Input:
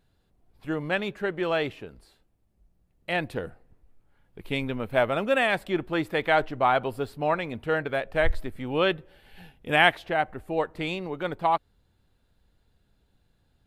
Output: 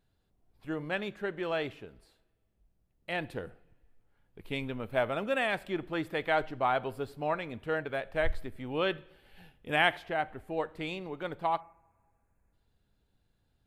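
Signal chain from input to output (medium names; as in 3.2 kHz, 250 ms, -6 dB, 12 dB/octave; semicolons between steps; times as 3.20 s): two-slope reverb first 0.61 s, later 1.9 s, from -18 dB, DRR 17.5 dB; time-frequency box 11.60–12.53 s, 2.7–6 kHz -25 dB; trim -6.5 dB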